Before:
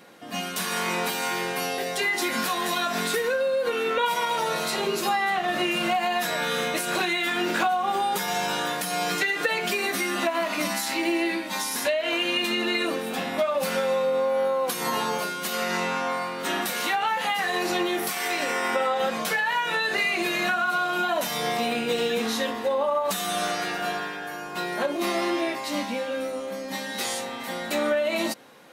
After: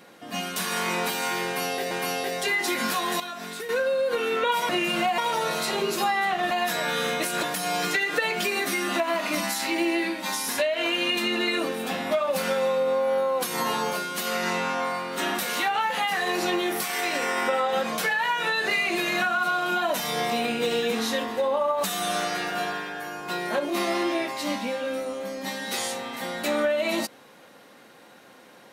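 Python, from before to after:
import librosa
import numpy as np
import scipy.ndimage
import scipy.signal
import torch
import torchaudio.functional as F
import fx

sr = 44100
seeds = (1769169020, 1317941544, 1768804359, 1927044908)

y = fx.edit(x, sr, fx.repeat(start_s=1.45, length_s=0.46, count=2),
    fx.clip_gain(start_s=2.74, length_s=0.49, db=-9.5),
    fx.move(start_s=5.56, length_s=0.49, to_s=4.23),
    fx.cut(start_s=6.97, length_s=1.73), tone=tone)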